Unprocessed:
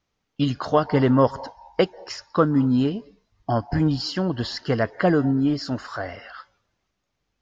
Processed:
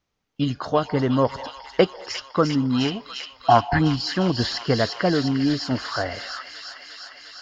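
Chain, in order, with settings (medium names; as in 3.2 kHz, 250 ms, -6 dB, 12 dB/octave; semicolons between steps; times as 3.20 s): gain riding within 4 dB 0.5 s; time-frequency box 2.72–3.79 s, 650–4600 Hz +12 dB; feedback echo behind a high-pass 352 ms, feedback 79%, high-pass 2.4 kHz, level -3 dB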